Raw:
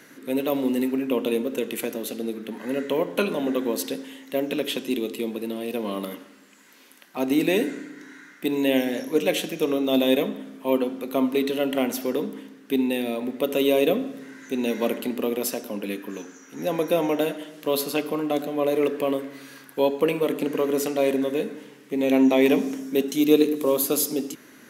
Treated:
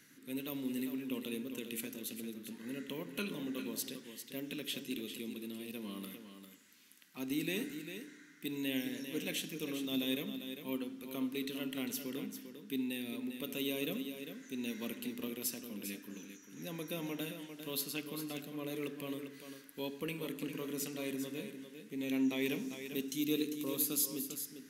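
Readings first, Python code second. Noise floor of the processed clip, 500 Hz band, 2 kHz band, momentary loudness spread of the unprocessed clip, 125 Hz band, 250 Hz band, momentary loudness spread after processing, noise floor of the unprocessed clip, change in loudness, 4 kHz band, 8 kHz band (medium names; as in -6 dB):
-58 dBFS, -20.5 dB, -12.0 dB, 11 LU, -9.5 dB, -14.0 dB, 11 LU, -50 dBFS, -15.0 dB, -9.5 dB, -8.0 dB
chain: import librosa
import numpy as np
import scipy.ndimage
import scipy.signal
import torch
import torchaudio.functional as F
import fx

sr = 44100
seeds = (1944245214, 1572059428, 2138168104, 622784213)

p1 = fx.tone_stack(x, sr, knobs='6-0-2')
p2 = p1 + fx.echo_single(p1, sr, ms=399, db=-9.0, dry=0)
y = p2 * 10.0 ** (6.0 / 20.0)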